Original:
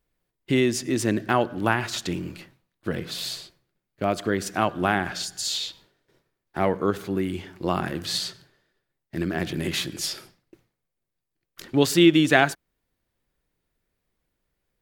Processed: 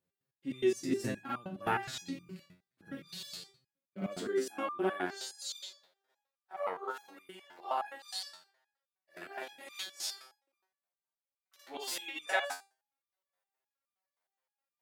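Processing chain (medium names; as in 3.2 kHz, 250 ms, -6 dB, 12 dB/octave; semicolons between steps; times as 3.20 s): high-pass sweep 150 Hz -> 760 Hz, 3.52–6.21 s; on a send: reverse echo 57 ms -8.5 dB; on the sum: resonator arpeggio 9.6 Hz 90–1200 Hz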